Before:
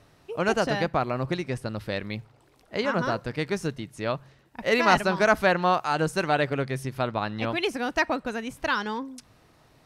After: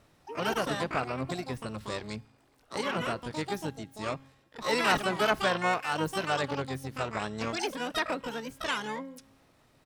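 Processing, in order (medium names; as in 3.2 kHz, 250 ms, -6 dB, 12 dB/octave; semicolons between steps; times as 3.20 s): harmony voices -7 st -13 dB, +12 st -3 dB; feedback comb 270 Hz, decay 1.2 s, mix 40%; trim -3 dB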